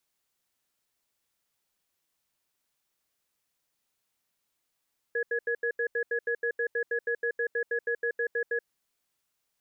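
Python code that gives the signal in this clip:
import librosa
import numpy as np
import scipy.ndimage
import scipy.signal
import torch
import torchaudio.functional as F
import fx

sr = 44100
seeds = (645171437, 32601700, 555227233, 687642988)

y = fx.cadence(sr, length_s=3.45, low_hz=470.0, high_hz=1680.0, on_s=0.08, off_s=0.08, level_db=-28.5)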